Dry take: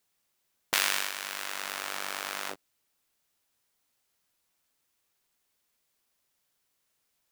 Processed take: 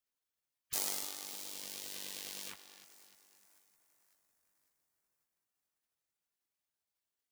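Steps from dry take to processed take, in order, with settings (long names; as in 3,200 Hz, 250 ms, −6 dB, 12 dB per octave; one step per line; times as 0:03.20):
echo with a time of its own for lows and highs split 2,900 Hz, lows 303 ms, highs 551 ms, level −15.5 dB
gate on every frequency bin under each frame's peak −10 dB weak
level −3.5 dB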